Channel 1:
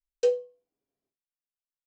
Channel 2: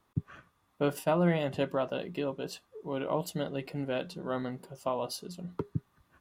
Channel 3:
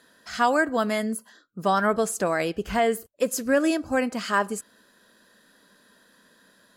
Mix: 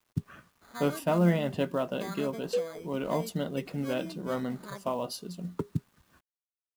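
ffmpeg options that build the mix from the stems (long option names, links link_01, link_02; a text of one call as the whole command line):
ffmpeg -i stem1.wav -i stem2.wav -i stem3.wav -filter_complex "[0:a]adelay=2300,volume=-6.5dB[link_01];[1:a]acrusher=bits=7:mode=log:mix=0:aa=0.000001,volume=0dB[link_02];[2:a]highshelf=frequency=5700:gain=-9,acrusher=samples=16:mix=1:aa=0.000001,adynamicequalizer=threshold=0.0141:dfrequency=1500:dqfactor=0.7:tfrequency=1500:tqfactor=0.7:attack=5:release=100:ratio=0.375:range=3:mode=cutabove:tftype=highshelf,adelay=350,volume=-19.5dB[link_03];[link_01][link_02][link_03]amix=inputs=3:normalize=0,bandreject=frequency=800:width=22,adynamicequalizer=threshold=0.00398:dfrequency=210:dqfactor=2:tfrequency=210:tqfactor=2:attack=5:release=100:ratio=0.375:range=3:mode=boostabove:tftype=bell,acrusher=bits=10:mix=0:aa=0.000001" out.wav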